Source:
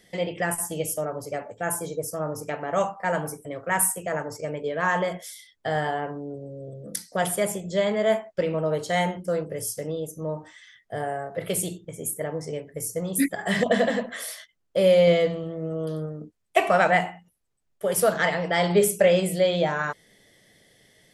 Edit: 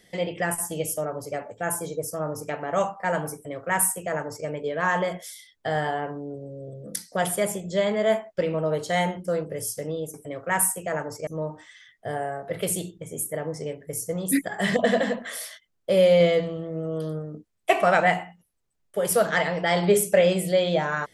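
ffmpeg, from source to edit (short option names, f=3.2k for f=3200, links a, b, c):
-filter_complex "[0:a]asplit=3[a][b][c];[a]atrim=end=10.142[d];[b]atrim=start=3.338:end=4.472[e];[c]atrim=start=10.138[f];[d][e]acrossfade=d=0.004:c1=hsin:c2=hsin[g];[g][f]acrossfade=d=0.004:c1=hsin:c2=hsin"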